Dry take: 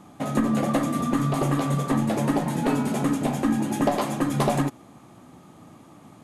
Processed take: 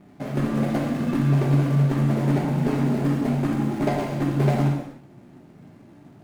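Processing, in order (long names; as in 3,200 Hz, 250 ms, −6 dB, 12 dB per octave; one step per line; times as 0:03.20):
running median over 41 samples
reverb whose tail is shaped and stops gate 340 ms falling, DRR −1.5 dB
level −1.5 dB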